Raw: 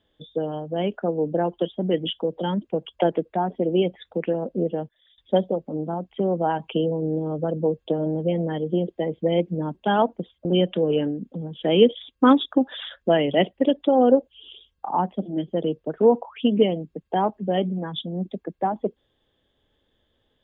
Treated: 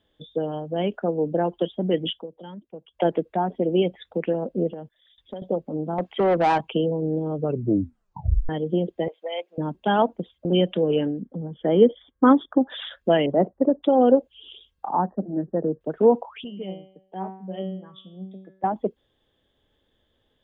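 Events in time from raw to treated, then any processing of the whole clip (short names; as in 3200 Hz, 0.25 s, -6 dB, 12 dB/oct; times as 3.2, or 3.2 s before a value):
2.09–3.07 dip -14.5 dB, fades 0.18 s
4.73–5.42 compressor, threshold -32 dBFS
5.98–6.61 overdrive pedal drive 20 dB, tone 2500 Hz, clips at -12 dBFS
7.36 tape stop 1.13 s
9.08–9.58 HPF 650 Hz 24 dB/oct
11.21–12.7 polynomial smoothing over 41 samples
13.26–13.83 steep low-pass 1400 Hz
14.95–15.81 brick-wall FIR low-pass 1900 Hz
16.44–18.64 resonator 190 Hz, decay 0.57 s, mix 90%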